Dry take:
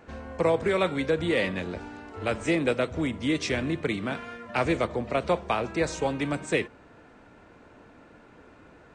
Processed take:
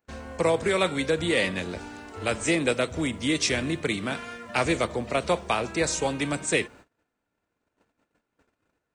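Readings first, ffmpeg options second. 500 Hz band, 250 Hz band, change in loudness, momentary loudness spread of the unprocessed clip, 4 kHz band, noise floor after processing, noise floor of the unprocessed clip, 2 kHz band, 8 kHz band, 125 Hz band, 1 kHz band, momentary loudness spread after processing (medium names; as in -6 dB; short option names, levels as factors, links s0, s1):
0.0 dB, 0.0 dB, +1.5 dB, 9 LU, +6.0 dB, -81 dBFS, -54 dBFS, +3.0 dB, +11.0 dB, 0.0 dB, +1.0 dB, 9 LU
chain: -af "agate=range=0.0355:threshold=0.00398:ratio=16:detection=peak,aemphasis=mode=production:type=75kf"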